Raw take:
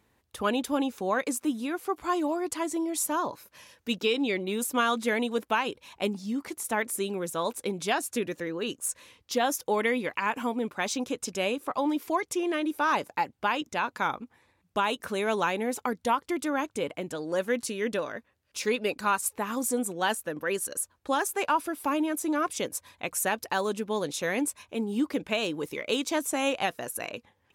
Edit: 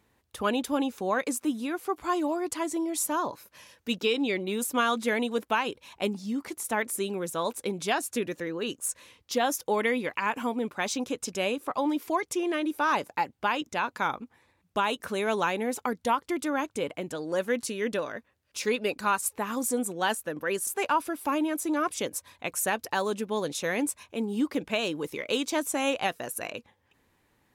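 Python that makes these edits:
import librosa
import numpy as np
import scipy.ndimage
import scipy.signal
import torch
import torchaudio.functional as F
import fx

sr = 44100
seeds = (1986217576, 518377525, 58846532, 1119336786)

y = fx.edit(x, sr, fx.cut(start_s=20.67, length_s=0.59), tone=tone)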